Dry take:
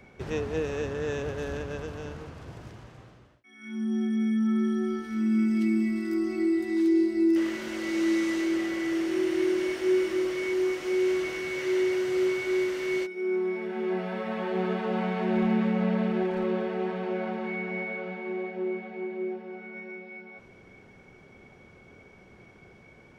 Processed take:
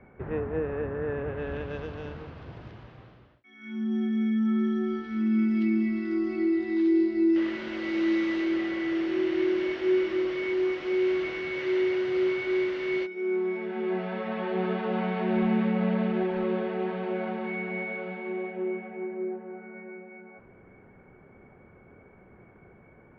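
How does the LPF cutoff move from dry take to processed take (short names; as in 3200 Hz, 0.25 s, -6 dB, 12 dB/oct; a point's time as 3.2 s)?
LPF 24 dB/oct
1.15 s 1900 Hz
1.76 s 4100 Hz
18.23 s 4100 Hz
19.26 s 1900 Hz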